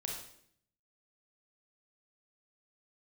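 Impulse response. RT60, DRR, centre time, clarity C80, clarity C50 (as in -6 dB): 0.65 s, -1.0 dB, 44 ms, 6.0 dB, 2.5 dB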